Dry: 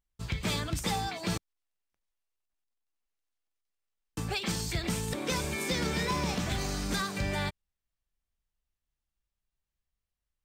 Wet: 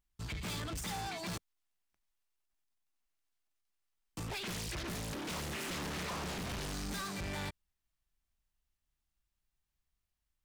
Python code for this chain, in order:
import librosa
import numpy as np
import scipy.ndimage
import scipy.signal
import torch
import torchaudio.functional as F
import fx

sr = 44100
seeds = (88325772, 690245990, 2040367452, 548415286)

y = fx.peak_eq(x, sr, hz=500.0, db=-13.5, octaves=0.21)
y = 10.0 ** (-39.0 / 20.0) * np.tanh(y / 10.0 ** (-39.0 / 20.0))
y = fx.doppler_dist(y, sr, depth_ms=0.91, at=(4.27, 6.73))
y = y * 10.0 ** (1.5 / 20.0)